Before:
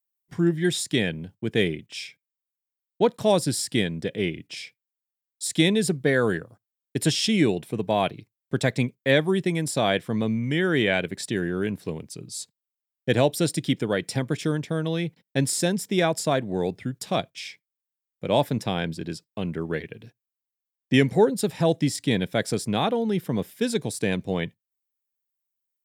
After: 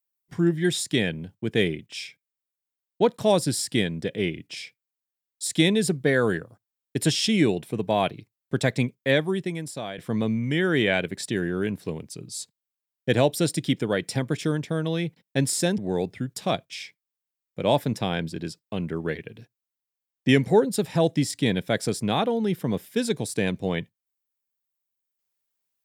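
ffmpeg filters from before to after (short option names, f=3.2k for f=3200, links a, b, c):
-filter_complex "[0:a]asplit=3[a][b][c];[a]atrim=end=9.98,asetpts=PTS-STARTPTS,afade=t=out:st=8.93:d=1.05:silence=0.177828[d];[b]atrim=start=9.98:end=15.782,asetpts=PTS-STARTPTS,afade=t=in:d=0.004:c=hsin:silence=0.177828[e];[c]atrim=start=16.428[f];[d][e]concat=n=2:v=0:a=1[g];[g][f]acrossfade=d=0.004:c1=hsin:c2=hsin"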